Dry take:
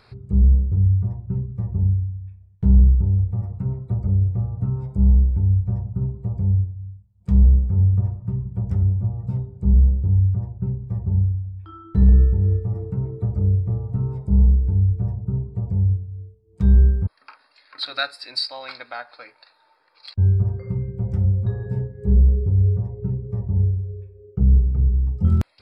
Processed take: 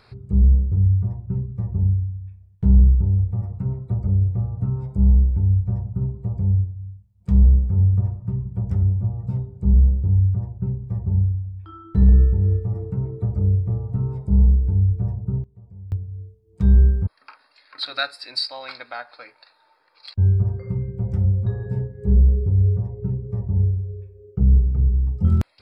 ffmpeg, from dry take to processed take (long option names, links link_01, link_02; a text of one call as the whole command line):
ffmpeg -i in.wav -filter_complex "[0:a]asplit=3[link_01][link_02][link_03];[link_01]atrim=end=15.44,asetpts=PTS-STARTPTS,afade=type=out:start_time=15.3:duration=0.14:curve=log:silence=0.105925[link_04];[link_02]atrim=start=15.44:end=15.92,asetpts=PTS-STARTPTS,volume=-19.5dB[link_05];[link_03]atrim=start=15.92,asetpts=PTS-STARTPTS,afade=type=in:duration=0.14:curve=log:silence=0.105925[link_06];[link_04][link_05][link_06]concat=n=3:v=0:a=1" out.wav